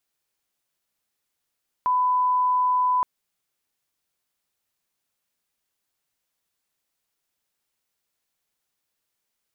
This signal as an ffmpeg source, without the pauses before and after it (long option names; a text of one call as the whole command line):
ffmpeg -f lavfi -i "sine=frequency=1000:duration=1.17:sample_rate=44100,volume=0.06dB" out.wav